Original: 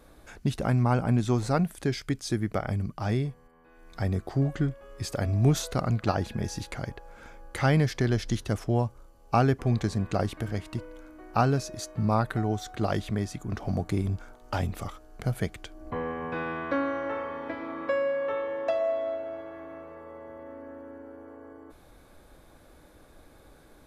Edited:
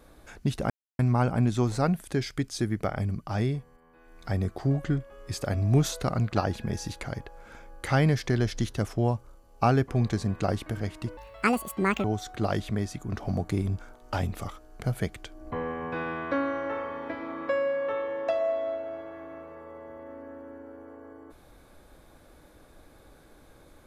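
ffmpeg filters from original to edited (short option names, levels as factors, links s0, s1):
-filter_complex "[0:a]asplit=4[s0][s1][s2][s3];[s0]atrim=end=0.7,asetpts=PTS-STARTPTS,afade=t=out:st=0.696:d=0.004:c=hsin,apad=pad_dur=0.29[s4];[s1]atrim=start=0.7:end=10.884,asetpts=PTS-STARTPTS,afade=t=in:d=0.004:c=hsin[s5];[s2]atrim=start=10.88:end=12.44,asetpts=PTS-STARTPTS,asetrate=78939,aresample=44100[s6];[s3]atrim=start=12.436[s7];[s4][s5]concat=n=2:v=0:a=1[s8];[s8][s6]acrossfade=d=0.004:c1=hsin:c2=hsin[s9];[s9][s7]acrossfade=d=0.004:c1=hsin:c2=hsin"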